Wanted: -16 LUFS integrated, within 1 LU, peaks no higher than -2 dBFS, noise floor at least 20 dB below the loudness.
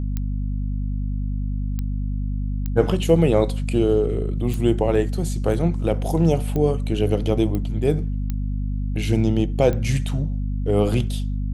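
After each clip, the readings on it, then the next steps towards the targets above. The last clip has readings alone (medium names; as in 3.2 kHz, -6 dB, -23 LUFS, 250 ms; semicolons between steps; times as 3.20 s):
clicks found 8; hum 50 Hz; highest harmonic 250 Hz; hum level -22 dBFS; loudness -22.5 LUFS; peak level -3.5 dBFS; loudness target -16.0 LUFS
-> de-click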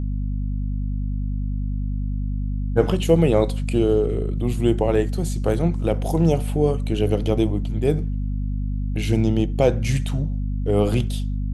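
clicks found 0; hum 50 Hz; highest harmonic 250 Hz; hum level -22 dBFS
-> de-hum 50 Hz, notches 5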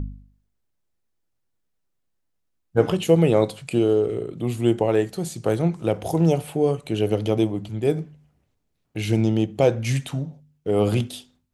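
hum not found; loudness -22.5 LUFS; peak level -4.5 dBFS; loudness target -16.0 LUFS
-> trim +6.5 dB; peak limiter -2 dBFS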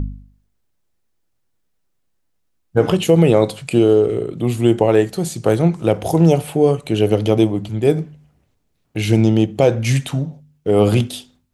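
loudness -16.5 LUFS; peak level -2.0 dBFS; noise floor -67 dBFS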